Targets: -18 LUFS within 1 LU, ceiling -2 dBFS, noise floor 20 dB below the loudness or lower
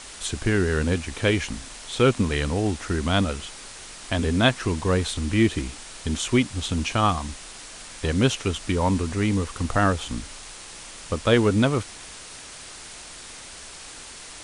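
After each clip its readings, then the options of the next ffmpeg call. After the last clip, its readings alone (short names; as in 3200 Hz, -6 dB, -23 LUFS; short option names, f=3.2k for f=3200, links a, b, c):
noise floor -42 dBFS; noise floor target -44 dBFS; loudness -24.0 LUFS; peak -5.0 dBFS; loudness target -18.0 LUFS
-> -af "afftdn=nr=6:nf=-42"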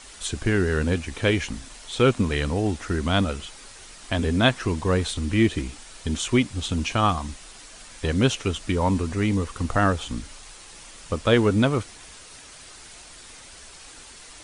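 noise floor -45 dBFS; loudness -24.0 LUFS; peak -5.0 dBFS; loudness target -18.0 LUFS
-> -af "volume=6dB,alimiter=limit=-2dB:level=0:latency=1"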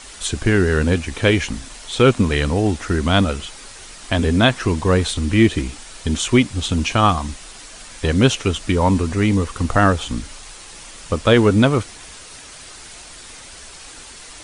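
loudness -18.0 LUFS; peak -2.0 dBFS; noise floor -39 dBFS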